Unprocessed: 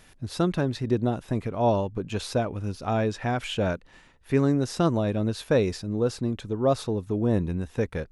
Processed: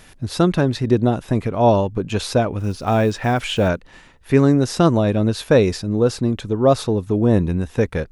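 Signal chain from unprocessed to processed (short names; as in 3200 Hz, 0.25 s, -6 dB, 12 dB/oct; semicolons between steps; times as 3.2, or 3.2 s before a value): 2.59–3.69 block floating point 7-bit; gain +8 dB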